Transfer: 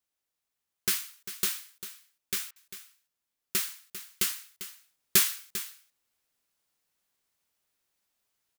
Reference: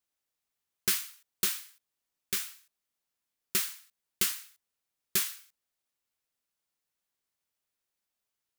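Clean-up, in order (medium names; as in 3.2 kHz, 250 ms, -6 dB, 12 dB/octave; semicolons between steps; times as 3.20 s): interpolate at 2.51 s, 49 ms; inverse comb 397 ms -13 dB; trim 0 dB, from 4.79 s -6.5 dB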